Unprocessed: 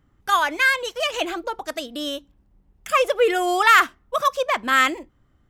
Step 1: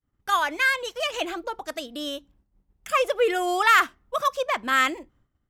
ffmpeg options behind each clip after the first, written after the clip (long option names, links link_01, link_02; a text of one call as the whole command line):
ffmpeg -i in.wav -af "agate=range=-33dB:threshold=-52dB:ratio=3:detection=peak,volume=-3.5dB" out.wav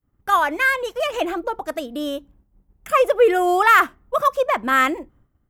ffmpeg -i in.wav -af "equalizer=frequency=4700:width=0.51:gain=-12,volume=8dB" out.wav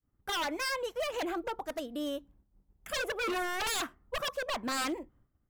ffmpeg -i in.wav -af "aeval=exprs='0.119*(abs(mod(val(0)/0.119+3,4)-2)-1)':channel_layout=same,volume=-9dB" out.wav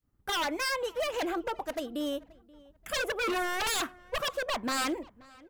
ffmpeg -i in.wav -filter_complex "[0:a]asplit=2[link_01][link_02];[link_02]adelay=530,lowpass=frequency=3100:poles=1,volume=-23dB,asplit=2[link_03][link_04];[link_04]adelay=530,lowpass=frequency=3100:poles=1,volume=0.26[link_05];[link_01][link_03][link_05]amix=inputs=3:normalize=0,volume=2.5dB" out.wav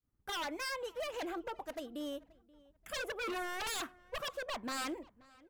ffmpeg -i in.wav -af "asoftclip=type=hard:threshold=-26dB,volume=-8dB" out.wav